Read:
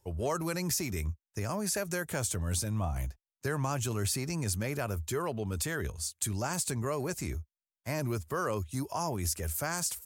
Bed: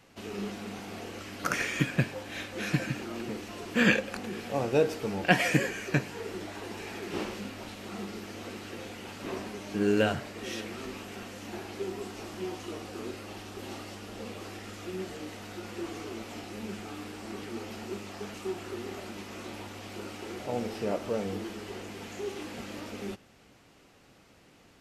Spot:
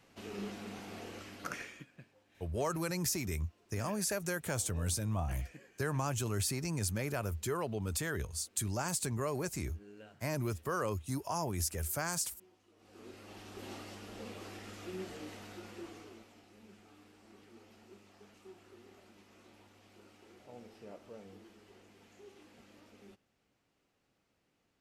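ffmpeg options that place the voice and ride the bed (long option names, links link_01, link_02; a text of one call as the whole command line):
ffmpeg -i stem1.wav -i stem2.wav -filter_complex "[0:a]adelay=2350,volume=-2.5dB[link_01];[1:a]volume=18dB,afade=type=out:start_time=1.14:duration=0.71:silence=0.0668344,afade=type=in:start_time=12.76:duration=0.87:silence=0.0668344,afade=type=out:start_time=15.32:duration=1.02:silence=0.199526[link_02];[link_01][link_02]amix=inputs=2:normalize=0" out.wav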